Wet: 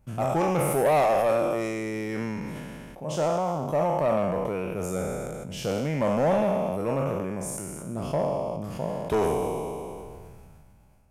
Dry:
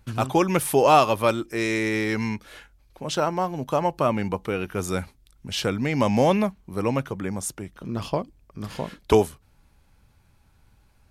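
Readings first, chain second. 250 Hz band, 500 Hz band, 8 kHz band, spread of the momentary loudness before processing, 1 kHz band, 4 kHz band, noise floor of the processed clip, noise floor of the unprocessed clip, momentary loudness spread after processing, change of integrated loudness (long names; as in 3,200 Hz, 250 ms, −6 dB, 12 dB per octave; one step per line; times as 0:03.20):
−4.0 dB, −0.5 dB, −3.5 dB, 14 LU, −3.5 dB, −9.5 dB, −52 dBFS, −60 dBFS, 12 LU, −3.0 dB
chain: peak hold with a decay on every bin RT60 1.38 s
graphic EQ with 15 bands 160 Hz +7 dB, 630 Hz +8 dB, 1,600 Hz −5 dB, 4,000 Hz −11 dB
soft clipping −9 dBFS, distortion −13 dB
level that may fall only so fast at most 21 dB per second
level −8 dB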